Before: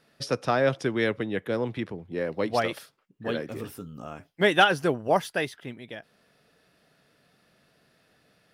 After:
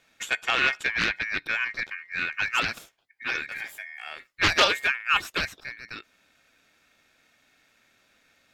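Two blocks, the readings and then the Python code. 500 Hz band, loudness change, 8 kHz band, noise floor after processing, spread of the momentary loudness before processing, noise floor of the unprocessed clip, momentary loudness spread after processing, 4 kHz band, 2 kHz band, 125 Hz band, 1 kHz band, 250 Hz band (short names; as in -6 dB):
-10.0 dB, +1.0 dB, +6.0 dB, -66 dBFS, 20 LU, -66 dBFS, 18 LU, +5.5 dB, +5.5 dB, -9.0 dB, -2.5 dB, -11.0 dB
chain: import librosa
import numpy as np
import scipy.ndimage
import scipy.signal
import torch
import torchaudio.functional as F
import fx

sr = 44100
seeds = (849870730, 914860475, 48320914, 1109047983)

p1 = x * np.sin(2.0 * np.pi * 2000.0 * np.arange(len(x)) / sr)
p2 = 10.0 ** (-19.5 / 20.0) * np.tanh(p1 / 10.0 ** (-19.5 / 20.0))
p3 = p1 + (p2 * 10.0 ** (-7.5 / 20.0))
y = fx.doppler_dist(p3, sr, depth_ms=0.56)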